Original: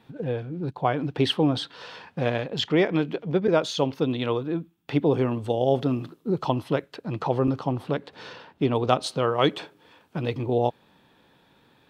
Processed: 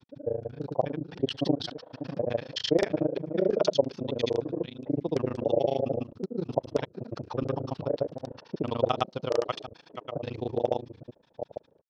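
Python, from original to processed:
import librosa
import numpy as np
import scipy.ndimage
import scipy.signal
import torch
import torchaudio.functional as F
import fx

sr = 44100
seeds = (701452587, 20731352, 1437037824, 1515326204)

y = fx.reverse_delay(x, sr, ms=443, wet_db=-8.5)
y = fx.filter_lfo_lowpass(y, sr, shape='square', hz=4.6, low_hz=580.0, high_hz=5400.0, q=3.9)
y = fx.granulator(y, sr, seeds[0], grain_ms=41.0, per_s=27.0, spray_ms=100.0, spread_st=0)
y = F.gain(torch.from_numpy(y), -4.5).numpy()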